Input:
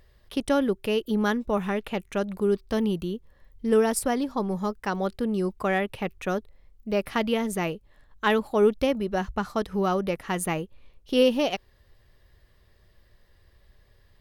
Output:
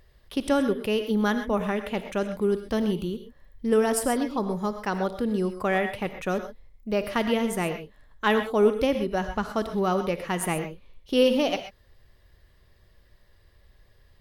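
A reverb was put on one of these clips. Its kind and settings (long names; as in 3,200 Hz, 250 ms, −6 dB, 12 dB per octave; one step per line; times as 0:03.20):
reverb whose tail is shaped and stops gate 150 ms rising, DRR 8 dB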